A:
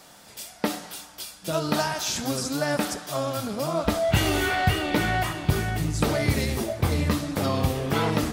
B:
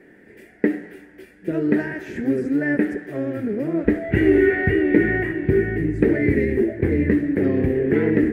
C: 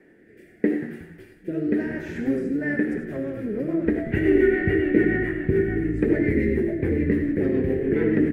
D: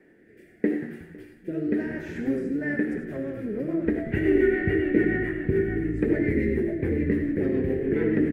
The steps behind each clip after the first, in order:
FFT filter 150 Hz 0 dB, 390 Hz +15 dB, 620 Hz -6 dB, 1.2 kHz -18 dB, 1.8 kHz +10 dB, 3.6 kHz -24 dB, 5.7 kHz -28 dB, 9.8 kHz -23 dB
frequency-shifting echo 182 ms, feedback 40%, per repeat -65 Hz, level -13.5 dB; rotary cabinet horn 0.8 Hz, later 7 Hz, at 2.29 s; gated-style reverb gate 120 ms rising, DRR 6 dB; trim -2.5 dB
delay 506 ms -24 dB; trim -2.5 dB

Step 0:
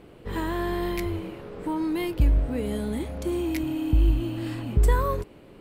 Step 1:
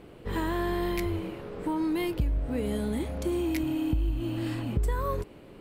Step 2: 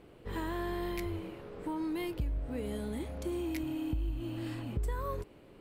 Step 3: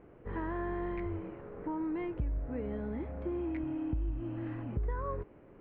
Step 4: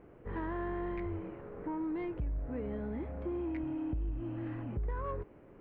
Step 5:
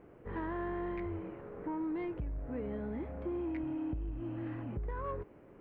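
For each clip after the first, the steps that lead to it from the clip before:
compression 6:1, threshold -24 dBFS, peak gain reduction 9 dB
peaking EQ 190 Hz -2 dB; trim -6.5 dB
low-pass 2 kHz 24 dB/octave
saturation -27.5 dBFS, distortion -21 dB
bass shelf 69 Hz -5.5 dB

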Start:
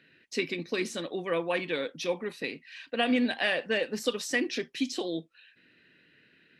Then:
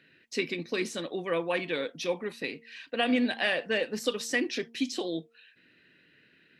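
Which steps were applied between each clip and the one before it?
de-hum 230.7 Hz, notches 4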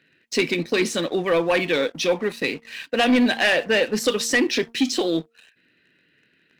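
waveshaping leveller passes 2; trim +3.5 dB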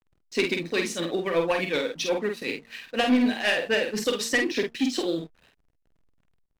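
tremolo triangle 8.1 Hz, depth 75%; hysteresis with a dead band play -48.5 dBFS; doubling 48 ms -4.5 dB; trim -2.5 dB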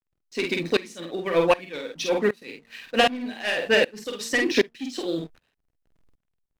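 sawtooth tremolo in dB swelling 1.3 Hz, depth 22 dB; trim +7.5 dB

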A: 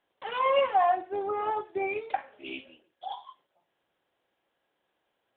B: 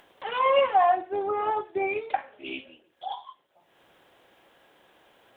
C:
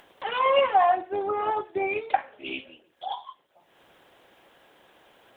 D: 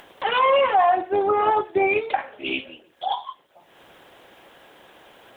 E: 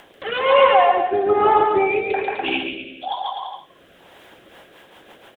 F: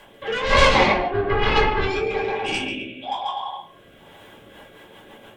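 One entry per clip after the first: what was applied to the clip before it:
upward compressor, threshold -48 dBFS; trim +3 dB
harmonic-percussive split percussive +4 dB
peak limiter -18 dBFS, peak gain reduction 8.5 dB; trim +7.5 dB
bouncing-ball echo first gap 140 ms, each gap 0.8×, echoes 5; rotary cabinet horn 1.1 Hz, later 7 Hz, at 4.09 s; trim +3.5 dB
Chebyshev shaper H 7 -9 dB, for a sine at -1 dBFS; reverberation RT60 0.30 s, pre-delay 3 ms, DRR -5.5 dB; trim -12.5 dB

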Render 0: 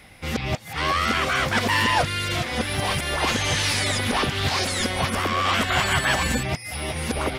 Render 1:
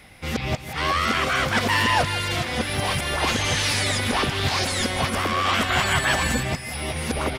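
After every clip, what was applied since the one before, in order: feedback delay 164 ms, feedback 50%, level -13.5 dB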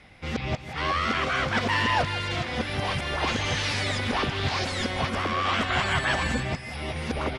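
distance through air 86 m; trim -3 dB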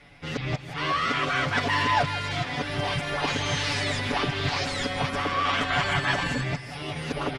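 comb 7 ms, depth 87%; trim -2 dB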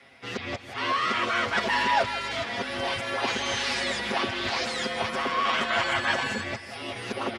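high-pass 270 Hz 12 dB/octave; frequency shift -39 Hz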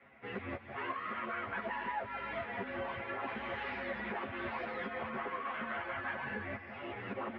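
low-pass 2.2 kHz 24 dB/octave; compression 5:1, threshold -31 dBFS, peak gain reduction 11 dB; three-phase chorus; trim -2 dB

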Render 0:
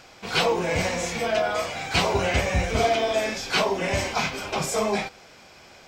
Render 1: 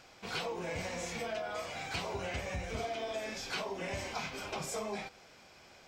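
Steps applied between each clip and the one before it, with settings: compression 4:1, threshold -27 dBFS, peak gain reduction 9 dB; trim -8.5 dB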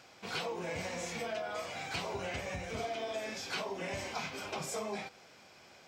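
high-pass 90 Hz 12 dB/octave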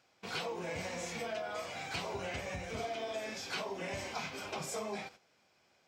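gate -52 dBFS, range -12 dB; trim -1 dB

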